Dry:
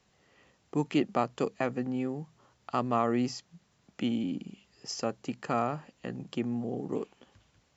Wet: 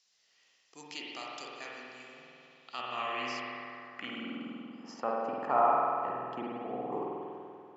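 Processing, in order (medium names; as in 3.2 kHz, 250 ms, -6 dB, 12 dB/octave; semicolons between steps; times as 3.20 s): spring tank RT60 2.3 s, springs 48 ms, chirp 75 ms, DRR -4 dB; band-pass sweep 5.2 kHz -> 900 Hz, 2.07–5.23 s; trim +6 dB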